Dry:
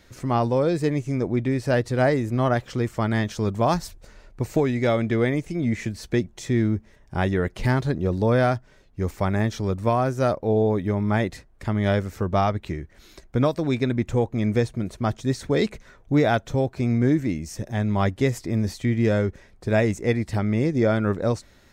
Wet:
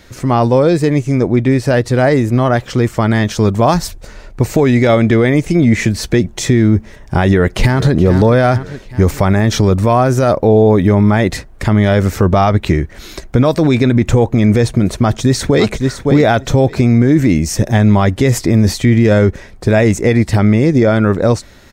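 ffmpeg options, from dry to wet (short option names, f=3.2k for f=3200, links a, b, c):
-filter_complex "[0:a]asplit=2[a][b];[b]afade=t=in:st=7.25:d=0.01,afade=t=out:st=7.94:d=0.01,aecho=0:1:420|840|1260|1680:0.158489|0.0792447|0.0396223|0.0198112[c];[a][c]amix=inputs=2:normalize=0,asplit=2[d][e];[e]afade=t=in:st=14.99:d=0.01,afade=t=out:st=15.66:d=0.01,aecho=0:1:560|1120:0.334965|0.0334965[f];[d][f]amix=inputs=2:normalize=0,dynaudnorm=f=320:g=31:m=11.5dB,alimiter=level_in=12.5dB:limit=-1dB:release=50:level=0:latency=1,volume=-1dB"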